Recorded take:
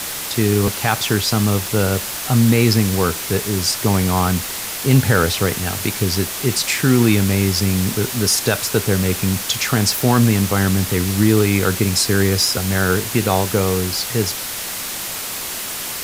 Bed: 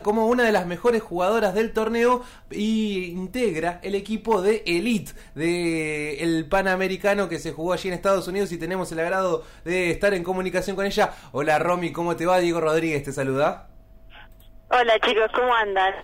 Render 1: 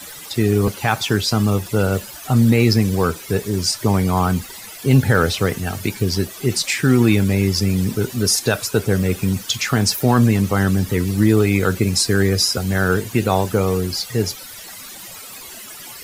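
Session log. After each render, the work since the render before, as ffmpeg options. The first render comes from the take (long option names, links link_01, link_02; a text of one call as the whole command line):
ffmpeg -i in.wav -af "afftdn=noise_reduction=15:noise_floor=-27" out.wav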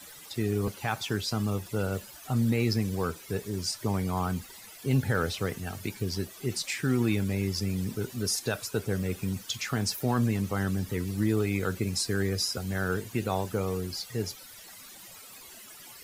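ffmpeg -i in.wav -af "volume=-12dB" out.wav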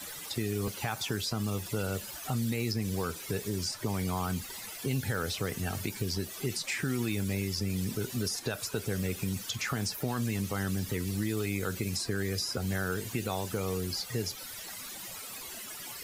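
ffmpeg -i in.wav -filter_complex "[0:a]acrossover=split=2100|4700[link_01][link_02][link_03];[link_01]acompressor=threshold=-34dB:ratio=4[link_04];[link_02]acompressor=threshold=-46dB:ratio=4[link_05];[link_03]acompressor=threshold=-42dB:ratio=4[link_06];[link_04][link_05][link_06]amix=inputs=3:normalize=0,asplit=2[link_07][link_08];[link_08]alimiter=level_in=6dB:limit=-24dB:level=0:latency=1:release=94,volume=-6dB,volume=-1dB[link_09];[link_07][link_09]amix=inputs=2:normalize=0" out.wav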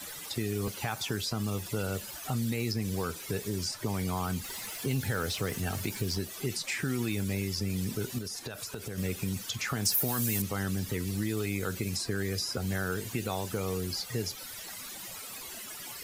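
ffmpeg -i in.wav -filter_complex "[0:a]asettb=1/sr,asplit=3[link_01][link_02][link_03];[link_01]atrim=end=4.444[link_04];[link_02]atrim=start=4.44:end=6.19,asetpts=PTS-STARTPTS,afade=type=in:duration=0.004:curve=qsin,afade=type=out:start_time=1.746:duration=0.004:curve=qsin,aeval=exprs='val(0)+0.5*0.00631*sgn(val(0))':channel_layout=same[link_05];[link_03]atrim=start=6.186[link_06];[link_04][link_05]acrossfade=duration=0.004:curve1=hsin:curve2=qsin[link_07];[link_07][link_06]acrossfade=duration=0.004:curve1=qsin:curve2=hsin,asettb=1/sr,asplit=3[link_08][link_09][link_10];[link_08]atrim=end=8.184[link_11];[link_09]atrim=start=8.18:end=8.98,asetpts=PTS-STARTPTS,afade=type=in:duration=0.004:curve=qsin,afade=type=out:start_time=0.796:duration=0.004:curve=qsin,acompressor=threshold=-34dB:ratio=6:attack=3.2:release=140:knee=1:detection=peak[link_12];[link_10]atrim=start=8.976[link_13];[link_11][link_12]acrossfade=duration=0.004:curve1=hsin:curve2=qsin[link_14];[link_14][link_13]acrossfade=duration=0.004:curve1=qsin:curve2=hsin,asettb=1/sr,asplit=3[link_15][link_16][link_17];[link_15]atrim=end=9.854[link_18];[link_16]atrim=start=9.85:end=10.42,asetpts=PTS-STARTPTS,afade=type=in:duration=0.004:curve=qsin,afade=type=out:start_time=0.566:duration=0.004:curve=qsin,aemphasis=mode=production:type=50fm[link_19];[link_17]atrim=start=10.416[link_20];[link_18][link_19]acrossfade=duration=0.004:curve1=hsin:curve2=qsin[link_21];[link_21][link_20]acrossfade=duration=0.004:curve1=qsin:curve2=hsin" out.wav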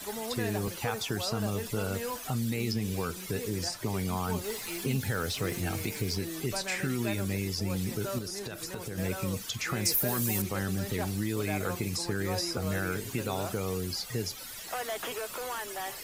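ffmpeg -i in.wav -i bed.wav -filter_complex "[1:a]volume=-17.5dB[link_01];[0:a][link_01]amix=inputs=2:normalize=0" out.wav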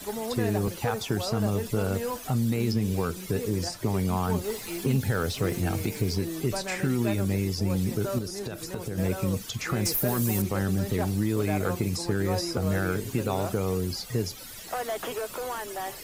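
ffmpeg -i in.wav -filter_complex "[0:a]aeval=exprs='clip(val(0),-1,0.0794)':channel_layout=same,asplit=2[link_01][link_02];[link_02]adynamicsmooth=sensitivity=2.5:basefreq=590,volume=-0.5dB[link_03];[link_01][link_03]amix=inputs=2:normalize=0" out.wav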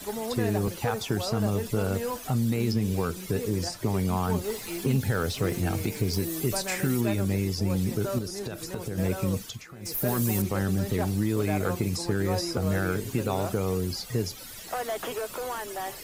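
ffmpeg -i in.wav -filter_complex "[0:a]asettb=1/sr,asplit=3[link_01][link_02][link_03];[link_01]atrim=end=6.134[link_04];[link_02]atrim=start=6.13:end=7.01,asetpts=PTS-STARTPTS,afade=type=in:duration=0.004:curve=qsin,afade=type=out:start_time=0.876:duration=0.004:curve=qsin,highshelf=frequency=8700:gain=12[link_05];[link_03]atrim=start=7.006[link_06];[link_04][link_05]acrossfade=duration=0.004:curve1=hsin:curve2=qsin[link_07];[link_07][link_06]acrossfade=duration=0.004:curve1=qsin:curve2=hsin,asplit=3[link_08][link_09][link_10];[link_08]atrim=end=9.67,asetpts=PTS-STARTPTS,afade=type=out:start_time=9.39:duration=0.28:silence=0.133352[link_11];[link_09]atrim=start=9.67:end=9.8,asetpts=PTS-STARTPTS,volume=-17.5dB[link_12];[link_10]atrim=start=9.8,asetpts=PTS-STARTPTS,afade=type=in:duration=0.28:silence=0.133352[link_13];[link_11][link_12][link_13]concat=n=3:v=0:a=1" out.wav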